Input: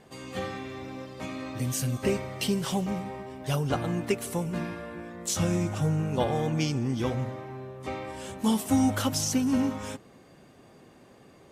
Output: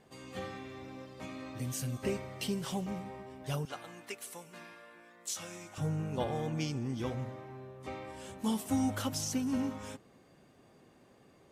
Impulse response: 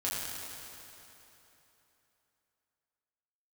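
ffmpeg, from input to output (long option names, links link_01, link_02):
-filter_complex "[0:a]asettb=1/sr,asplit=3[link_01][link_02][link_03];[link_01]atrim=end=3.654[link_04];[link_02]atrim=start=3.65:end=5.78,asetpts=PTS-STARTPTS,afade=type=in:duration=0.004:curve=qsin,afade=type=out:start_time=2.126:duration=0.004:curve=qsin,highpass=frequency=1400:poles=1[link_05];[link_03]atrim=start=5.776[link_06];[link_04][link_05]acrossfade=duration=0.004:curve1=hsin:curve2=qsin[link_07];[link_07][link_06]acrossfade=duration=0.004:curve1=qsin:curve2=hsin,volume=-7.5dB"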